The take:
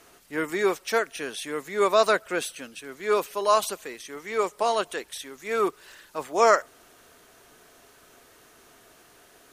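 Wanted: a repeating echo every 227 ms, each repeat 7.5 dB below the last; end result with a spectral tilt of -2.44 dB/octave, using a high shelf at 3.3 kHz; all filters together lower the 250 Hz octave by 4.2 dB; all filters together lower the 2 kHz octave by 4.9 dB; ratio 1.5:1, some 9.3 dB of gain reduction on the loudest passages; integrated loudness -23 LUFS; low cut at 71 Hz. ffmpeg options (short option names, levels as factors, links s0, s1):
-af "highpass=71,equalizer=f=250:t=o:g=-7,equalizer=f=2000:t=o:g=-8.5,highshelf=f=3300:g=6,acompressor=threshold=0.00794:ratio=1.5,aecho=1:1:227|454|681|908|1135:0.422|0.177|0.0744|0.0312|0.0131,volume=3.76"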